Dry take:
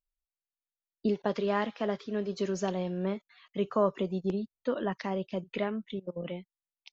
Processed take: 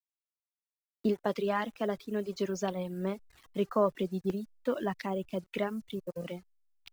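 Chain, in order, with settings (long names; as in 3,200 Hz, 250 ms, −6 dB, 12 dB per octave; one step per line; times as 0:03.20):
hold until the input has moved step −50 dBFS
reverb reduction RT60 0.93 s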